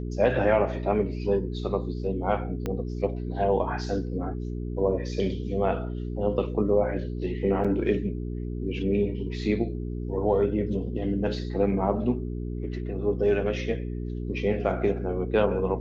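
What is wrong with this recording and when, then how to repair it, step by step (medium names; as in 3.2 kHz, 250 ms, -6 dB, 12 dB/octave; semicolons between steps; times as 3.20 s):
hum 60 Hz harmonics 7 -32 dBFS
2.66 s: pop -17 dBFS
7.64–7.65 s: dropout 5.8 ms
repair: de-click; de-hum 60 Hz, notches 7; interpolate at 7.64 s, 5.8 ms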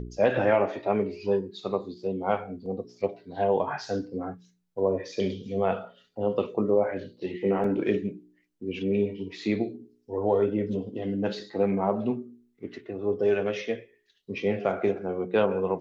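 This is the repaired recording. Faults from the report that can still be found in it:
2.66 s: pop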